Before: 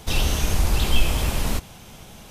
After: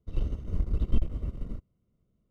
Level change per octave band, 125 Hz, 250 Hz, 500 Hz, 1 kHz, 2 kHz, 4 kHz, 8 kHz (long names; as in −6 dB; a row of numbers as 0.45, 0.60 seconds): −8.0 dB, −8.5 dB, −14.0 dB, −25.0 dB, −30.5 dB, −31.0 dB, below −35 dB